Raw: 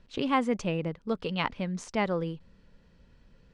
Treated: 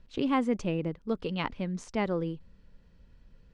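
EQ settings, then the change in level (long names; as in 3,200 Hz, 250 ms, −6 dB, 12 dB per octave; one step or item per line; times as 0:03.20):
dynamic equaliser 320 Hz, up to +6 dB, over −41 dBFS, Q 1.4
low-shelf EQ 95 Hz +8.5 dB
−4.0 dB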